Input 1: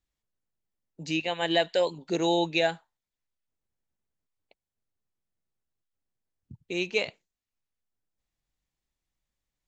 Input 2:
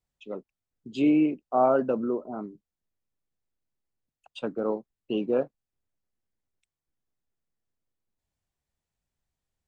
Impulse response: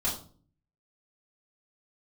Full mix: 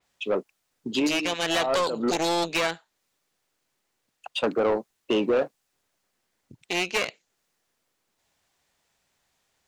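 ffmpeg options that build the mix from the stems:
-filter_complex "[0:a]equalizer=frequency=900:width_type=o:width=1.4:gain=-9,aeval=exprs='0.224*(cos(1*acos(clip(val(0)/0.224,-1,1)))-cos(1*PI/2))+0.0501*(cos(8*acos(clip(val(0)/0.224,-1,1)))-cos(8*PI/2))':channel_layout=same,bass=frequency=250:gain=-2,treble=frequency=4000:gain=9,volume=-7dB,asplit=2[link_01][link_02];[1:a]volume=1.5dB[link_03];[link_02]apad=whole_len=426786[link_04];[link_03][link_04]sidechaincompress=threshold=-53dB:ratio=12:attack=23:release=144[link_05];[link_01][link_05]amix=inputs=2:normalize=0,acrossover=split=2300|5900[link_06][link_07][link_08];[link_06]acompressor=threshold=-28dB:ratio=4[link_09];[link_07]acompressor=threshold=-47dB:ratio=4[link_10];[link_08]acompressor=threshold=-59dB:ratio=4[link_11];[link_09][link_10][link_11]amix=inputs=3:normalize=0,asplit=2[link_12][link_13];[link_13]highpass=frequency=720:poles=1,volume=24dB,asoftclip=type=tanh:threshold=-12.5dB[link_14];[link_12][link_14]amix=inputs=2:normalize=0,lowpass=frequency=3900:poles=1,volume=-6dB,adynamicequalizer=threshold=0.00631:dfrequency=5100:dqfactor=0.7:tfrequency=5100:tqfactor=0.7:attack=5:release=100:ratio=0.375:range=2.5:mode=boostabove:tftype=highshelf"

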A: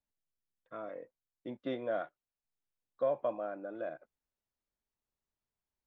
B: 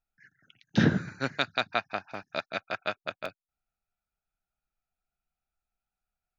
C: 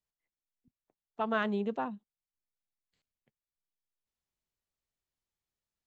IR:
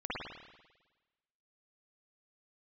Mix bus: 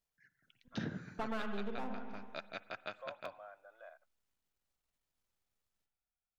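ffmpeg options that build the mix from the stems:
-filter_complex "[0:a]highpass=frequency=740:width=0.5412,highpass=frequency=740:width=1.3066,dynaudnorm=framelen=280:gausssize=5:maxgain=7.5dB,volume=-15.5dB[link_01];[1:a]volume=-11dB,asplit=2[link_02][link_03];[link_03]volume=-23dB[link_04];[2:a]aeval=exprs='if(lt(val(0),0),0.251*val(0),val(0))':channel_layout=same,volume=3dB,asplit=2[link_05][link_06];[link_06]volume=-8dB[link_07];[3:a]atrim=start_sample=2205[link_08];[link_04][link_07]amix=inputs=2:normalize=0[link_09];[link_09][link_08]afir=irnorm=-1:irlink=0[link_10];[link_01][link_02][link_05][link_10]amix=inputs=4:normalize=0,acompressor=threshold=-38dB:ratio=3"

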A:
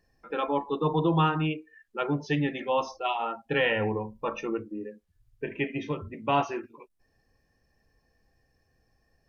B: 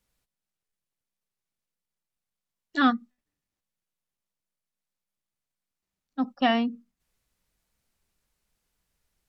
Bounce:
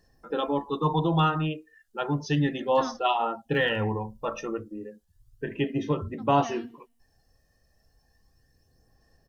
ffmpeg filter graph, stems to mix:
ffmpeg -i stem1.wav -i stem2.wav -filter_complex "[0:a]equalizer=frequency=2300:width_type=o:width=0.23:gain=-13.5,aphaser=in_gain=1:out_gain=1:delay=1.6:decay=0.4:speed=0.33:type=sinusoidal,volume=0.5dB[link_01];[1:a]volume=-16.5dB,asplit=2[link_02][link_03];[link_03]volume=-21dB,aecho=0:1:81|162|243|324|405|486:1|0.46|0.212|0.0973|0.0448|0.0206[link_04];[link_01][link_02][link_04]amix=inputs=3:normalize=0,bass=frequency=250:gain=1,treble=frequency=4000:gain=7" out.wav

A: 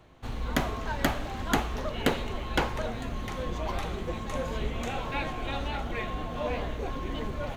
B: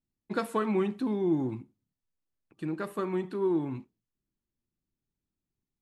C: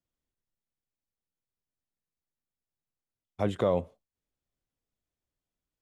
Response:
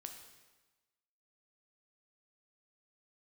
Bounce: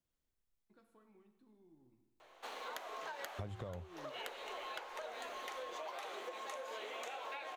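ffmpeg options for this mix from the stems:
-filter_complex "[0:a]highpass=frequency=470:width=0.5412,highpass=frequency=470:width=1.3066,acompressor=threshold=-37dB:ratio=5,adelay=2200,volume=-1.5dB[link_01];[1:a]acompressor=threshold=-46dB:ratio=2,adelay=400,volume=-6.5dB,asplit=2[link_02][link_03];[link_03]volume=-18dB[link_04];[2:a]asubboost=boost=9:cutoff=95,volume=-0.5dB,asplit=2[link_05][link_06];[link_06]apad=whole_len=274243[link_07];[link_02][link_07]sidechaingate=range=-33dB:threshold=-60dB:ratio=16:detection=peak[link_08];[3:a]atrim=start_sample=2205[link_09];[link_04][link_09]afir=irnorm=-1:irlink=0[link_10];[link_01][link_08][link_05][link_10]amix=inputs=4:normalize=0,bandreject=frequency=53.28:width_type=h:width=4,bandreject=frequency=106.56:width_type=h:width=4,acompressor=threshold=-41dB:ratio=16"

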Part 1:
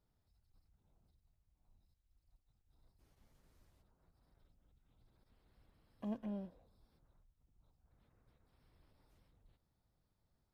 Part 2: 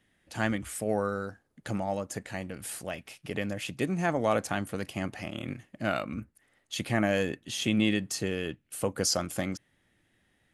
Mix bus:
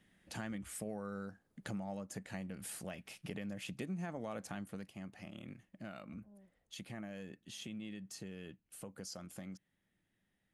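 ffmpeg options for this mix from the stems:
ffmpeg -i stem1.wav -i stem2.wav -filter_complex "[0:a]lowpass=1200,volume=-12.5dB[link_01];[1:a]equalizer=frequency=190:width=3.5:gain=8.5,alimiter=limit=-18dB:level=0:latency=1:release=216,volume=-1.5dB,afade=type=out:start_time=4.51:duration=0.43:silence=0.251189,asplit=2[link_02][link_03];[link_03]apad=whole_len=464700[link_04];[link_01][link_04]sidechaincompress=threshold=-48dB:ratio=8:attack=7.3:release=675[link_05];[link_05][link_02]amix=inputs=2:normalize=0,acompressor=threshold=-45dB:ratio=2.5" out.wav

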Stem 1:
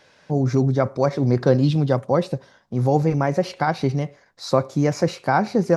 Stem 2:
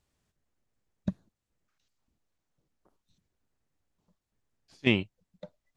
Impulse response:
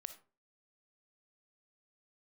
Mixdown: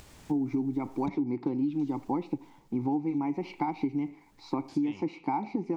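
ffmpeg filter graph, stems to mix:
-filter_complex "[0:a]dynaudnorm=framelen=110:gausssize=5:maxgain=11.5dB,asplit=3[link_01][link_02][link_03];[link_01]bandpass=frequency=300:width_type=q:width=8,volume=0dB[link_04];[link_02]bandpass=frequency=870:width_type=q:width=8,volume=-6dB[link_05];[link_03]bandpass=frequency=2240:width_type=q:width=8,volume=-9dB[link_06];[link_04][link_05][link_06]amix=inputs=3:normalize=0,volume=2dB,asplit=2[link_07][link_08];[link_08]volume=-5.5dB[link_09];[1:a]acompressor=mode=upward:threshold=-27dB:ratio=2.5,volume=-6.5dB,afade=type=out:start_time=1.92:duration=0.41:silence=0.354813,asplit=2[link_10][link_11];[link_11]volume=-2dB[link_12];[2:a]atrim=start_sample=2205[link_13];[link_09][link_12]amix=inputs=2:normalize=0[link_14];[link_14][link_13]afir=irnorm=-1:irlink=0[link_15];[link_07][link_10][link_15]amix=inputs=3:normalize=0,acompressor=threshold=-26dB:ratio=10"

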